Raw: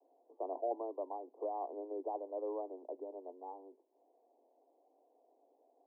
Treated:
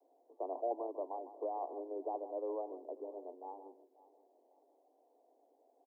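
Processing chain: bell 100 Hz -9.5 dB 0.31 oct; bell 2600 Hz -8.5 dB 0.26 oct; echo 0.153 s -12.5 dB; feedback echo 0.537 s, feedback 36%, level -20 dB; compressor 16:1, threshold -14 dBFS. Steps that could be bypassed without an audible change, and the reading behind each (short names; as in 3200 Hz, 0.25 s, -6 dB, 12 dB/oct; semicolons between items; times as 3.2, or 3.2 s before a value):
bell 100 Hz: input band starts at 250 Hz; bell 2600 Hz: input band ends at 1100 Hz; compressor, threshold -14 dBFS: input peak -24.5 dBFS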